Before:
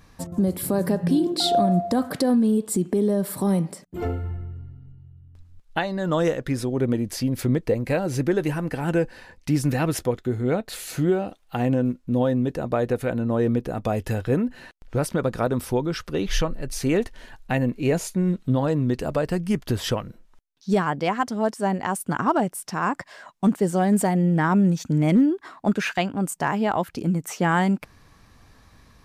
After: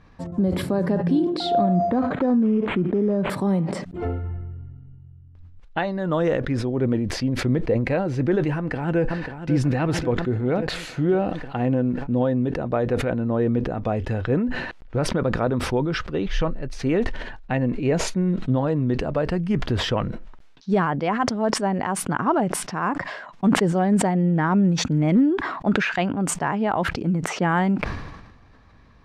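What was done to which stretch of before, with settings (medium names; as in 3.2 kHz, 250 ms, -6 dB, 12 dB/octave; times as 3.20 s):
1.75–3.30 s: decimation joined by straight lines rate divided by 8×
8.56–9.53 s: echo throw 540 ms, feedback 60%, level -10.5 dB
whole clip: Bessel low-pass 2.6 kHz, order 2; decay stretcher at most 49 dB/s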